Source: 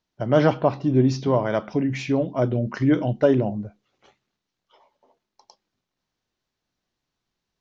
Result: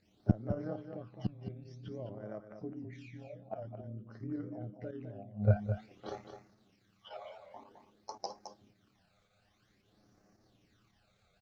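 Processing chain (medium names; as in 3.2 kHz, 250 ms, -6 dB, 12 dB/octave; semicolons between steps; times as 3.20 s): high-pass 61 Hz 6 dB/octave; treble shelf 3.1 kHz -10.5 dB; band-stop 960 Hz, Q 5.6; in parallel at -1 dB: compression, threshold -27 dBFS, peak gain reduction 13.5 dB; on the sum: phase shifter stages 12, 0.77 Hz, lowest notch 290–3500 Hz; inverted gate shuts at -24 dBFS, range -34 dB; granular stretch 1.5×, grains 58 ms; volume shaper 110 bpm, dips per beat 1, -8 dB, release 80 ms; Chebyshev shaper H 3 -27 dB, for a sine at -25.5 dBFS; on a send: delay 212 ms -8.5 dB; on the sum: warped record 78 rpm, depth 100 cents; trim +13 dB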